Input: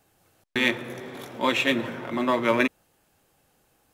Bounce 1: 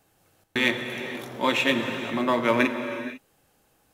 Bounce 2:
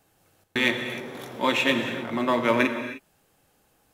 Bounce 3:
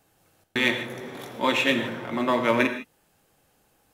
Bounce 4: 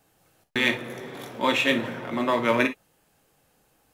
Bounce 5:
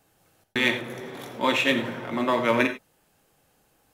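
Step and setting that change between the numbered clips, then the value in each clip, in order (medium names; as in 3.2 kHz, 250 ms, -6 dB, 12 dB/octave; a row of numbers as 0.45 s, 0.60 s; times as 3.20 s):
gated-style reverb, gate: 520 ms, 330 ms, 180 ms, 80 ms, 120 ms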